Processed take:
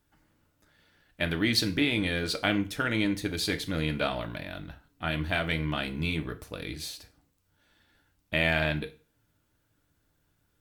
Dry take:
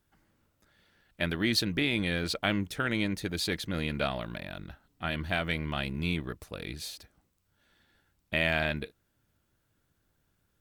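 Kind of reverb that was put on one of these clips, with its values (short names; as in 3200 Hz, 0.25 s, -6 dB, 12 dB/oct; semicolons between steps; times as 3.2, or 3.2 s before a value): FDN reverb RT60 0.36 s, low-frequency decay 0.95×, high-frequency decay 0.95×, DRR 6.5 dB; gain +1 dB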